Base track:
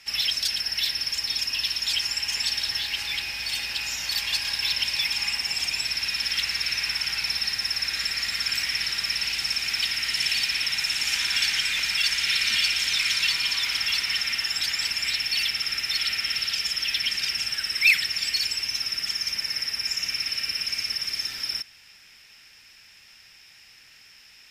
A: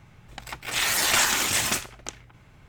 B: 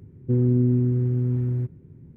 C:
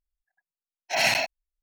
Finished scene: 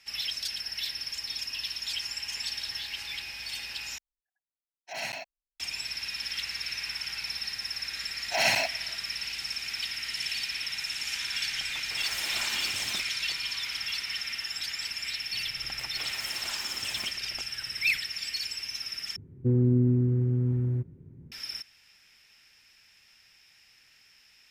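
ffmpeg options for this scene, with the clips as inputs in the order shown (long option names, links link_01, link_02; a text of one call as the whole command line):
ffmpeg -i bed.wav -i cue0.wav -i cue1.wav -i cue2.wav -filter_complex "[3:a]asplit=2[link_01][link_02];[1:a]asplit=2[link_03][link_04];[0:a]volume=-8dB[link_05];[link_02]asplit=2[link_06][link_07];[link_07]adelay=290,highpass=300,lowpass=3400,asoftclip=type=hard:threshold=-18dB,volume=-23dB[link_08];[link_06][link_08]amix=inputs=2:normalize=0[link_09];[link_03]alimiter=limit=-13.5dB:level=0:latency=1:release=71[link_10];[link_04]acompressor=threshold=-28dB:ratio=12:attack=0.17:release=573:knee=1:detection=peak[link_11];[link_05]asplit=3[link_12][link_13][link_14];[link_12]atrim=end=3.984[link_15];[link_01]atrim=end=1.62,asetpts=PTS-STARTPTS,volume=-13dB[link_16];[link_13]atrim=start=5.596:end=19.164[link_17];[2:a]atrim=end=2.16,asetpts=PTS-STARTPTS,volume=-3dB[link_18];[link_14]atrim=start=21.316[link_19];[link_09]atrim=end=1.62,asetpts=PTS-STARTPTS,volume=-2.5dB,afade=type=in:duration=0.004:curve=hsin,afade=type=out:start_time=1.616:duration=0.004:curve=hsin,adelay=7410[link_20];[link_10]atrim=end=2.68,asetpts=PTS-STARTPTS,volume=-13dB,afade=type=in:duration=0.004:curve=hsin,afade=type=out:start_time=2.676:duration=0.004:curve=hsin,adelay=11230[link_21];[link_11]atrim=end=2.68,asetpts=PTS-STARTPTS,volume=-3dB,afade=type=in:duration=0.004:curve=hsin,afade=type=out:start_time=2.676:duration=0.004:curve=hsin,adelay=15320[link_22];[link_15][link_16]acrossfade=duration=0.004:curve1=hsin:curve2=hsin[link_23];[link_23][link_17]acrossfade=duration=0.004:curve1=hsin:curve2=hsin[link_24];[link_24][link_18]acrossfade=duration=0.004:curve1=hsin:curve2=hsin[link_25];[link_25][link_19]acrossfade=duration=0.004:curve1=hsin:curve2=hsin[link_26];[link_26][link_20][link_21][link_22]amix=inputs=4:normalize=0" out.wav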